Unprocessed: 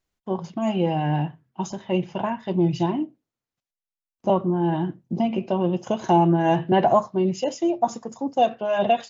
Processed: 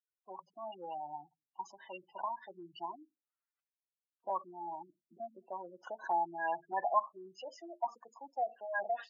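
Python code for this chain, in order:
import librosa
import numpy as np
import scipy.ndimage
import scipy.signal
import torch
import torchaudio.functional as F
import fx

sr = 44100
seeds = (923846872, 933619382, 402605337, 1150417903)

y = fx.spec_gate(x, sr, threshold_db=-15, keep='strong')
y = fx.env_lowpass_down(y, sr, base_hz=2000.0, full_db=-15.5)
y = fx.ladder_bandpass(y, sr, hz=1700.0, resonance_pct=45)
y = y * librosa.db_to_amplitude(7.5)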